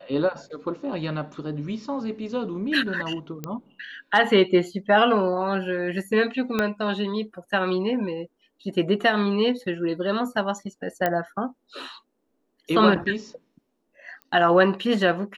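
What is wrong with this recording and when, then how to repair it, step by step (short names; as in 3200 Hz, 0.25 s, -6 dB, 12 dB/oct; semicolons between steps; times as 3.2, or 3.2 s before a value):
3.44 pop -17 dBFS
6.59 pop -10 dBFS
11.06 pop -10 dBFS
14.22 pop -27 dBFS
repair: de-click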